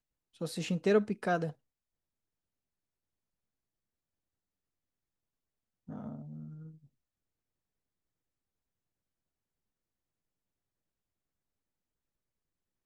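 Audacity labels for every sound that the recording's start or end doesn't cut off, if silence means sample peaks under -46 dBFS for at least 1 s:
5.890000	6.700000	sound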